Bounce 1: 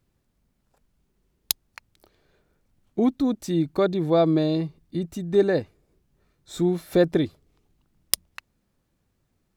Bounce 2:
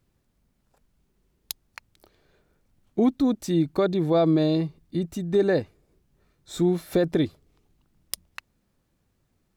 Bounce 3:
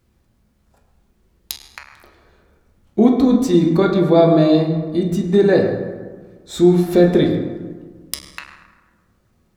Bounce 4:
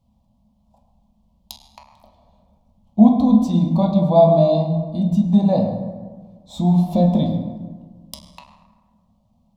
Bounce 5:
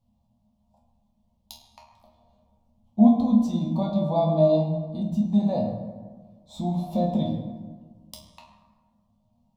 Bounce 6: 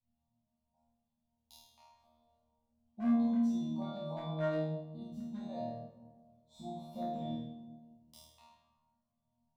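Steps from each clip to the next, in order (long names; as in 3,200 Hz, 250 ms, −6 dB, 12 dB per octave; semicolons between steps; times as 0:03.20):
brickwall limiter −13.5 dBFS, peak gain reduction 10.5 dB; level +1 dB
convolution reverb RT60 1.5 s, pre-delay 7 ms, DRR −0.5 dB; level +5.5 dB
drawn EQ curve 140 Hz 0 dB, 220 Hz +8 dB, 390 Hz −24 dB, 600 Hz +5 dB, 1,000 Hz +4 dB, 1,500 Hz −29 dB, 3,200 Hz −4 dB, 8,700 Hz −10 dB; level −2 dB
resonators tuned to a chord D#2 sus4, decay 0.25 s; level +4 dB
gain into a clipping stage and back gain 15 dB; dynamic equaliser 1,800 Hz, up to +5 dB, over −45 dBFS, Q 1.3; resonators tuned to a chord D#2 fifth, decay 0.52 s; level −4.5 dB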